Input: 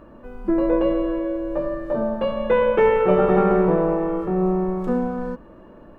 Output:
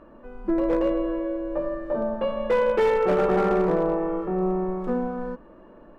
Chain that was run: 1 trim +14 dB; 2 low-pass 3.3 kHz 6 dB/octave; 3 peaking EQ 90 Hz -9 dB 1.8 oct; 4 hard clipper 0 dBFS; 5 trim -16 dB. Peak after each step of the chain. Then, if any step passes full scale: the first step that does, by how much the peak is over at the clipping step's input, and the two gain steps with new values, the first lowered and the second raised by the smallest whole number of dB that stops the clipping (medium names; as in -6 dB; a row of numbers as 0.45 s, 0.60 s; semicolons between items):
+9.5 dBFS, +9.5 dBFS, +8.0 dBFS, 0.0 dBFS, -16.0 dBFS; step 1, 8.0 dB; step 1 +6 dB, step 5 -8 dB